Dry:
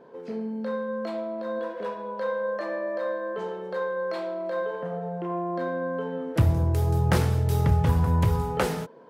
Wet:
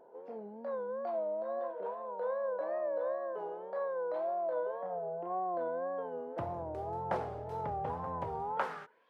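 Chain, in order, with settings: band-pass sweep 720 Hz -> 2900 Hz, 8.47–9.08; wow and flutter 110 cents; gain -1 dB

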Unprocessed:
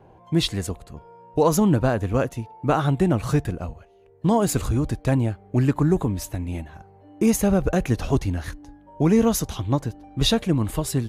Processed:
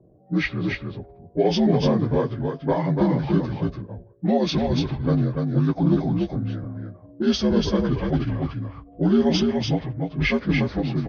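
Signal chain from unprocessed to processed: inharmonic rescaling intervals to 79%; speakerphone echo 90 ms, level -27 dB; low-pass opened by the level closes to 430 Hz, open at -16 dBFS; on a send: echo 0.29 s -4 dB

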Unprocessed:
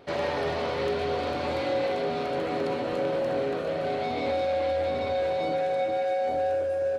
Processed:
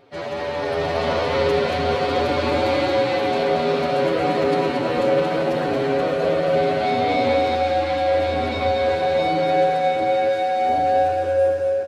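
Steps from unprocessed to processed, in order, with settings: AGC gain up to 8.5 dB; time stretch by phase-locked vocoder 1.7×; echo 0.228 s -5 dB

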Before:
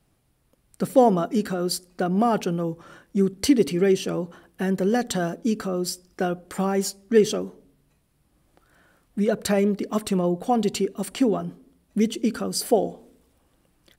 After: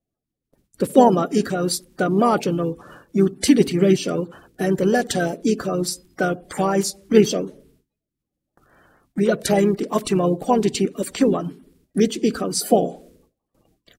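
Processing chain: bin magnitudes rounded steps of 30 dB; gate with hold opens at -51 dBFS; harmoniser -3 st -12 dB; gain +4 dB

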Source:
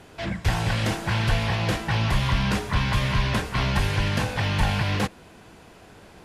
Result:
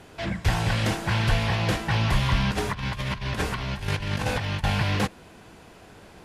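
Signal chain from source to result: 2.51–4.64 negative-ratio compressor -27 dBFS, ratio -0.5

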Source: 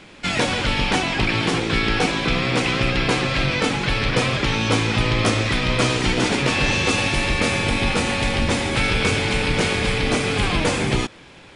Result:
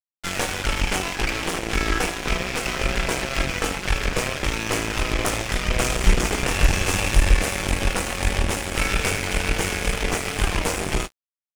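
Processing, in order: 5.76–7.34 low shelf 110 Hz +10.5 dB; on a send: early reflections 21 ms -9.5 dB, 54 ms -16 dB, 76 ms -15.5 dB; on the sum: added harmonics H 5 -20 dB, 8 -13 dB, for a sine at -1 dBFS; ten-band EQ 125 Hz -12 dB, 250 Hz -9 dB, 500 Hz -5 dB, 1000 Hz -6 dB, 2000 Hz -4 dB, 4000 Hz -12 dB; wow and flutter 25 cents; crossover distortion -32 dBFS; gain +1 dB

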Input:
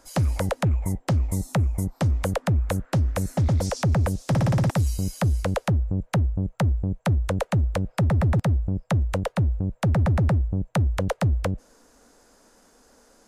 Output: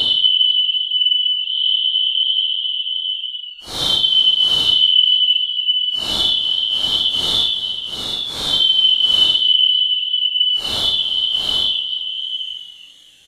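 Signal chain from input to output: four-band scrambler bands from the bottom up 2413; early reflections 37 ms -16.5 dB, 75 ms -4 dB; Paulstretch 10×, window 0.05 s, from 10.37; warbling echo 0.243 s, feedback 60%, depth 163 cents, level -21 dB; gain +4.5 dB

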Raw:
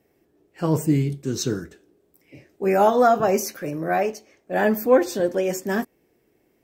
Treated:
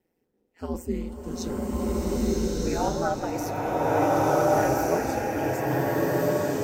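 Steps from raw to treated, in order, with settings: notch comb 560 Hz; ring modulator 87 Hz; bloom reverb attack 1.42 s, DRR -8 dB; gain -7 dB

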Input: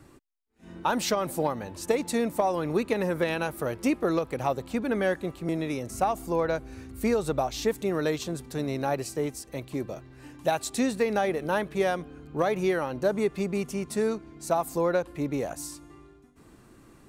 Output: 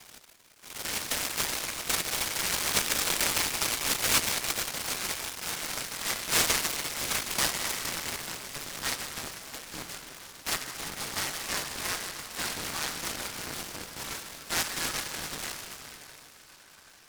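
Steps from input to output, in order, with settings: rattling part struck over -34 dBFS, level -18 dBFS; in parallel at +3 dB: compressor, threshold -35 dBFS, peak gain reduction 14.5 dB; on the sum: limiter -13.5 dBFS, peak gain reduction 6 dB; 4.2–6.05 ring modulator 840 Hz; band-pass sweep 380 Hz -> 1100 Hz, 5.29–8.67; echo with dull and thin repeats by turns 0.15 s, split 1000 Hz, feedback 71%, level -9 dB; on a send at -4 dB: reverb RT60 2.9 s, pre-delay 6 ms; on the sum: inverted band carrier 2700 Hz; noise-modulated delay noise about 3100 Hz, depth 0.14 ms

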